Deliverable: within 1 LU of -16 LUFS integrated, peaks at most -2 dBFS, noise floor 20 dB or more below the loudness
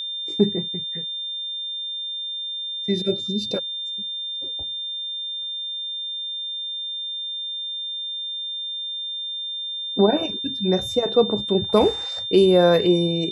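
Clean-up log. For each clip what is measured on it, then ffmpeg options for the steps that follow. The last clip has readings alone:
steady tone 3.6 kHz; tone level -27 dBFS; loudness -23.0 LUFS; peak level -4.5 dBFS; loudness target -16.0 LUFS
-> -af "bandreject=f=3600:w=30"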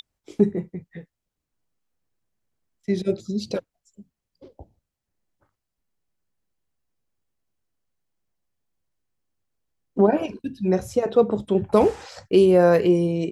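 steady tone not found; loudness -21.0 LUFS; peak level -4.5 dBFS; loudness target -16.0 LUFS
-> -af "volume=1.78,alimiter=limit=0.794:level=0:latency=1"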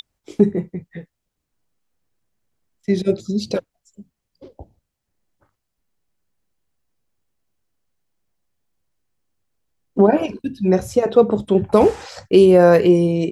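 loudness -16.5 LUFS; peak level -2.0 dBFS; noise floor -79 dBFS

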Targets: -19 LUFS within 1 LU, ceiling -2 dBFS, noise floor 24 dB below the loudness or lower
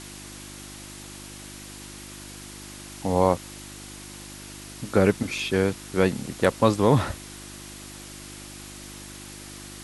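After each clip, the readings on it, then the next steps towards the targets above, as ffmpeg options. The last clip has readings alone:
hum 50 Hz; highest harmonic 350 Hz; hum level -45 dBFS; noise floor -42 dBFS; noise floor target -48 dBFS; loudness -24.0 LUFS; peak level -3.5 dBFS; loudness target -19.0 LUFS
-> -af "bandreject=f=50:t=h:w=4,bandreject=f=100:t=h:w=4,bandreject=f=150:t=h:w=4,bandreject=f=200:t=h:w=4,bandreject=f=250:t=h:w=4,bandreject=f=300:t=h:w=4,bandreject=f=350:t=h:w=4"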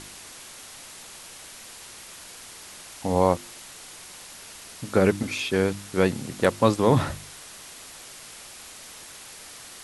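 hum not found; noise floor -44 dBFS; noise floor target -48 dBFS
-> -af "afftdn=nr=6:nf=-44"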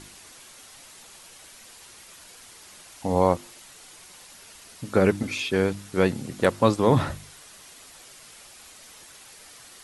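noise floor -49 dBFS; loudness -24.0 LUFS; peak level -3.5 dBFS; loudness target -19.0 LUFS
-> -af "volume=1.78,alimiter=limit=0.794:level=0:latency=1"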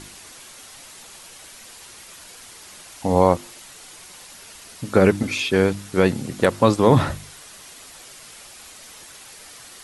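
loudness -19.5 LUFS; peak level -2.0 dBFS; noise floor -44 dBFS

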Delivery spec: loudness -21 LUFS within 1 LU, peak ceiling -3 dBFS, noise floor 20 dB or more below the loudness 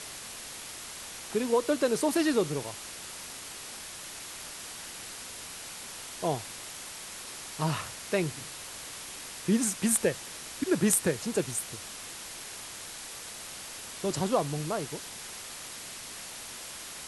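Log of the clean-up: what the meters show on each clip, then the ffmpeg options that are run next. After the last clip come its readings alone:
noise floor -43 dBFS; noise floor target -53 dBFS; loudness -32.5 LUFS; peak level -12.0 dBFS; loudness target -21.0 LUFS
-> -af "afftdn=nr=10:nf=-43"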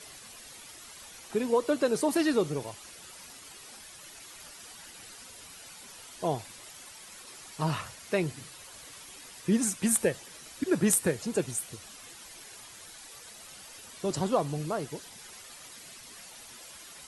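noise floor -49 dBFS; noise floor target -50 dBFS
-> -af "afftdn=nr=6:nf=-49"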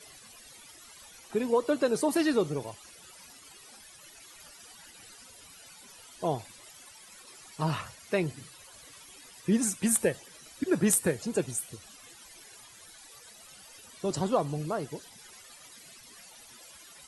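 noise floor -53 dBFS; loudness -29.5 LUFS; peak level -12.5 dBFS; loudness target -21.0 LUFS
-> -af "volume=2.66"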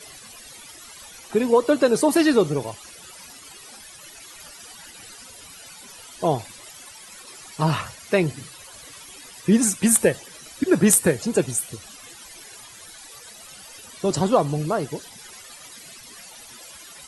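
loudness -21.0 LUFS; peak level -4.0 dBFS; noise floor -44 dBFS

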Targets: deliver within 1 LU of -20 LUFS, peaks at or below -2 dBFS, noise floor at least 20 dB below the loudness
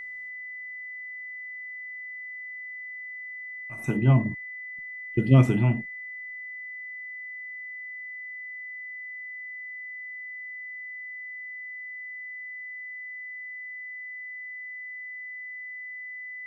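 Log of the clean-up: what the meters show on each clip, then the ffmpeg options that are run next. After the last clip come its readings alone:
steady tone 2 kHz; tone level -36 dBFS; loudness -31.5 LUFS; peak level -6.0 dBFS; loudness target -20.0 LUFS
-> -af "bandreject=f=2000:w=30"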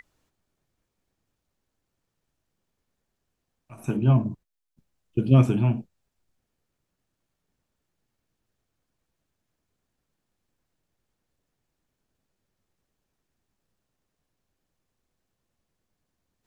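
steady tone not found; loudness -23.0 LUFS; peak level -5.5 dBFS; loudness target -20.0 LUFS
-> -af "volume=1.41"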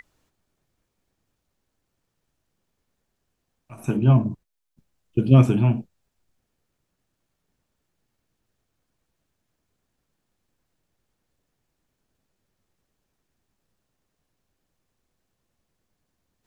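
loudness -20.0 LUFS; peak level -2.5 dBFS; noise floor -78 dBFS

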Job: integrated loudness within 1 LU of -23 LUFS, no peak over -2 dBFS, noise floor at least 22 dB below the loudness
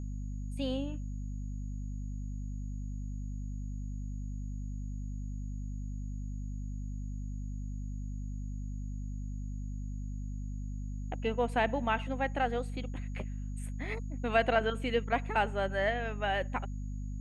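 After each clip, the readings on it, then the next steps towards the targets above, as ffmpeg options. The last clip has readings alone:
hum 50 Hz; highest harmonic 250 Hz; hum level -35 dBFS; steady tone 6.7 kHz; tone level -65 dBFS; loudness -36.0 LUFS; peak level -14.5 dBFS; loudness target -23.0 LUFS
-> -af "bandreject=f=50:t=h:w=6,bandreject=f=100:t=h:w=6,bandreject=f=150:t=h:w=6,bandreject=f=200:t=h:w=6,bandreject=f=250:t=h:w=6"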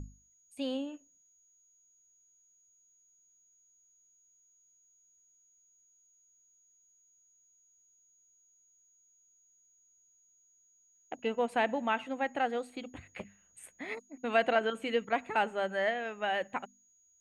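hum not found; steady tone 6.7 kHz; tone level -65 dBFS
-> -af "bandreject=f=6700:w=30"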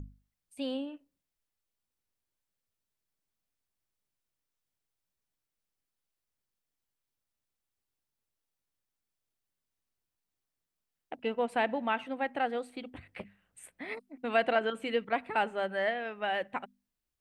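steady tone not found; loudness -33.0 LUFS; peak level -14.5 dBFS; loudness target -23.0 LUFS
-> -af "volume=3.16"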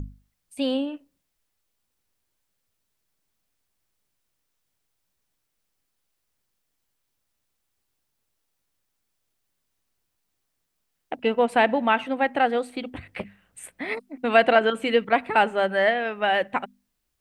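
loudness -23.0 LUFS; peak level -4.5 dBFS; noise floor -78 dBFS

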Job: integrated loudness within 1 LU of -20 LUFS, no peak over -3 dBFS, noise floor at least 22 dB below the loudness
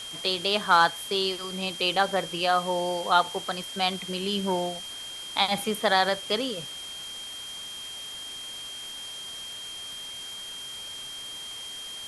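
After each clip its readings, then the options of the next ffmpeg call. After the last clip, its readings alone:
steady tone 3.2 kHz; tone level -37 dBFS; noise floor -39 dBFS; noise floor target -50 dBFS; loudness -28.0 LUFS; peak level -7.5 dBFS; loudness target -20.0 LUFS
-> -af "bandreject=f=3200:w=30"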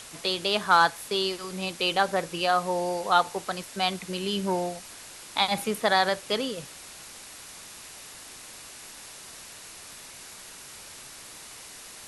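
steady tone not found; noise floor -45 dBFS; noise floor target -48 dBFS
-> -af "afftdn=nr=6:nf=-45"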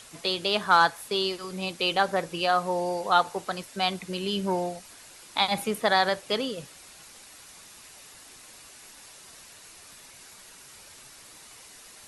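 noise floor -50 dBFS; loudness -26.0 LUFS; peak level -7.5 dBFS; loudness target -20.0 LUFS
-> -af "volume=2,alimiter=limit=0.708:level=0:latency=1"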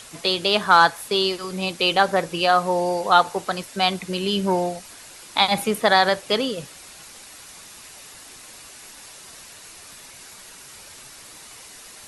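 loudness -20.5 LUFS; peak level -3.0 dBFS; noise floor -44 dBFS

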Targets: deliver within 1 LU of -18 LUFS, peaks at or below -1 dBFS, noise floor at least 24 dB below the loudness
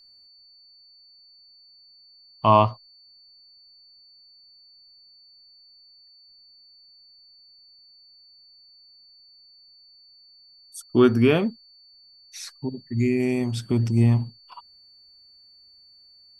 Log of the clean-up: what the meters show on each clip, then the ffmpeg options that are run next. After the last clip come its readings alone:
steady tone 4.5 kHz; tone level -51 dBFS; loudness -22.0 LUFS; peak level -3.0 dBFS; loudness target -18.0 LUFS
-> -af "bandreject=f=4500:w=30"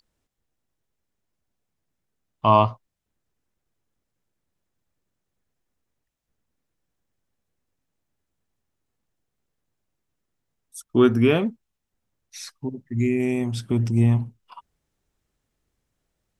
steady tone not found; loudness -21.5 LUFS; peak level -3.0 dBFS; loudness target -18.0 LUFS
-> -af "volume=1.5,alimiter=limit=0.891:level=0:latency=1"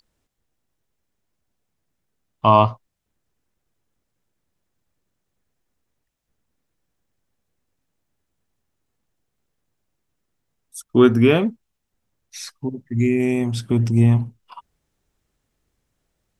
loudness -18.0 LUFS; peak level -1.0 dBFS; noise floor -77 dBFS

